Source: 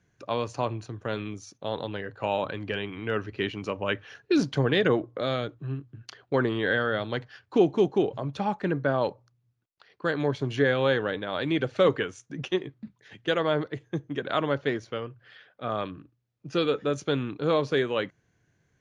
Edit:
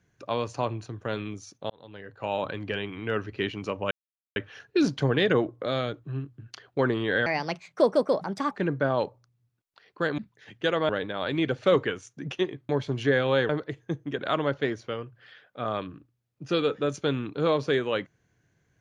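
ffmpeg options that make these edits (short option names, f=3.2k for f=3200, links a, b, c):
-filter_complex "[0:a]asplit=9[a][b][c][d][e][f][g][h][i];[a]atrim=end=1.7,asetpts=PTS-STARTPTS,afade=t=out:st=1.696:d=0.004:c=hsin[j];[b]atrim=start=1.7:end=3.91,asetpts=PTS-STARTPTS,afade=t=in:d=0.79,afade=t=out:st=2.206:d=0.004:c=hsin,apad=pad_dur=0.45[k];[c]atrim=start=3.91:end=6.814,asetpts=PTS-STARTPTS,afade=t=in:d=0.004:c=hsin[l];[d]atrim=start=6.81:end=8.55,asetpts=PTS-STARTPTS,asetrate=61299,aresample=44100,atrim=end_sample=55204,asetpts=PTS-STARTPTS[m];[e]atrim=start=8.546:end=10.222[n];[f]atrim=start=12.818:end=13.532[o];[g]atrim=start=11.018:end=12.822[p];[h]atrim=start=10.218:end=11.022[q];[i]atrim=start=13.528[r];[j][k][l]concat=n=3:v=0:a=1[s];[s][m]acrossfade=d=0.004:c1=hsin:c2=hsin[t];[t][n]acrossfade=d=0.004:c1=hsin:c2=hsin[u];[u][o]acrossfade=d=0.004:c1=hsin:c2=hsin[v];[v][p]acrossfade=d=0.004:c1=hsin:c2=hsin[w];[w][q]acrossfade=d=0.004:c1=hsin:c2=hsin[x];[x][r]acrossfade=d=0.004:c1=hsin:c2=hsin"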